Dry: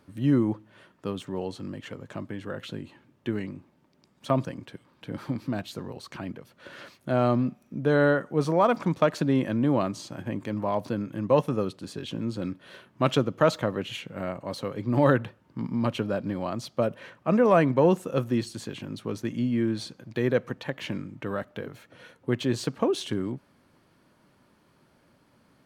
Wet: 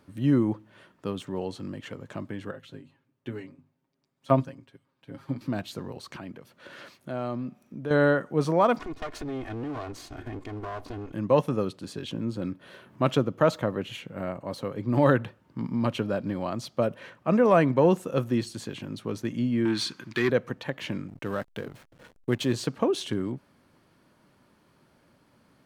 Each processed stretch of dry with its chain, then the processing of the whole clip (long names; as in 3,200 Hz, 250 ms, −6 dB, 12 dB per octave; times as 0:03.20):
0:02.51–0:05.41: mains-hum notches 50/100/150/200/250 Hz + comb filter 7.4 ms, depth 62% + expander for the loud parts, over −46 dBFS
0:06.17–0:07.91: low-shelf EQ 64 Hz −9.5 dB + downward compressor 1.5 to 1, threshold −42 dBFS
0:08.79–0:11.14: lower of the sound and its delayed copy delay 2.8 ms + high-shelf EQ 9,700 Hz −9.5 dB + downward compressor 2.5 to 1, threshold −34 dBFS
0:12.11–0:14.89: parametric band 4,700 Hz −4 dB 2.8 octaves + upward compression, threshold −44 dBFS
0:19.65–0:20.30: flat-topped bell 610 Hz −12.5 dB 1 octave + mid-hump overdrive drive 17 dB, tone 5,300 Hz, clips at −14.5 dBFS
0:21.08–0:22.53: high-shelf EQ 5,500 Hz +11 dB + slack as between gear wheels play −40.5 dBFS
whole clip: no processing